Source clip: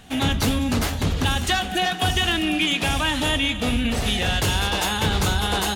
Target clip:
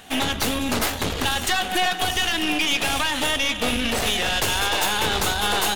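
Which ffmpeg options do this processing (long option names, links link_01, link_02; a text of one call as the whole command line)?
ffmpeg -i in.wav -af "bass=frequency=250:gain=-12,treble=frequency=4000:gain=-5,alimiter=limit=-17.5dB:level=0:latency=1:release=223,crystalizer=i=1:c=0,aeval=exprs='(tanh(15.8*val(0)+0.7)-tanh(0.7))/15.8':channel_layout=same,volume=8.5dB" out.wav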